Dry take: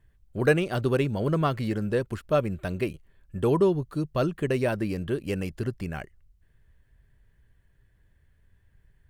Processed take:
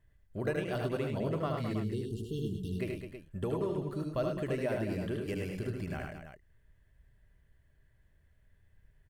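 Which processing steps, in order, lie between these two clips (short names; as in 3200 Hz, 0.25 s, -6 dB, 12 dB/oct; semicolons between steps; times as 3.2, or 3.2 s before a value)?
spectral delete 1.73–2.78, 470–2700 Hz; compressor 4:1, threshold -27 dBFS, peak gain reduction 10.5 dB; small resonant body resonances 620/2000 Hz, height 7 dB; on a send: tapped delay 76/103/209/322 ms -4.5/-6.5/-9.5/-10.5 dB; on the sum: gain -6 dB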